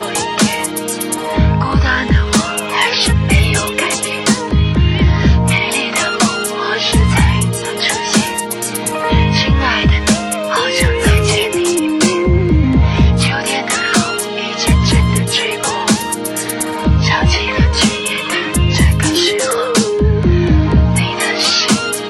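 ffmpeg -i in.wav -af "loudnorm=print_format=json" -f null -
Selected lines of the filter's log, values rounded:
"input_i" : "-13.5",
"input_tp" : "-2.3",
"input_lra" : "1.7",
"input_thresh" : "-23.5",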